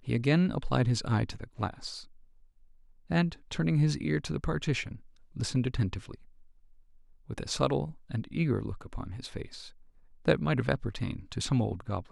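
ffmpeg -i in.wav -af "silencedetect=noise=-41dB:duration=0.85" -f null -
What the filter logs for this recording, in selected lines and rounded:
silence_start: 2.04
silence_end: 3.10 | silence_duration: 1.07
silence_start: 6.15
silence_end: 7.30 | silence_duration: 1.15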